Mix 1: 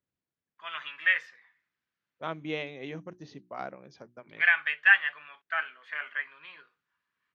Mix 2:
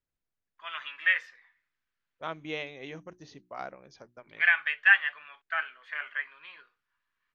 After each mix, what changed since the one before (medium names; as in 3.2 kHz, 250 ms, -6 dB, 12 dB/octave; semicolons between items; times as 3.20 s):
second voice: remove band-pass 150–5900 Hz; master: add bass shelf 270 Hz -10 dB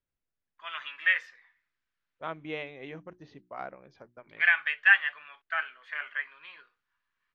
second voice: add low-pass 2.8 kHz 12 dB/octave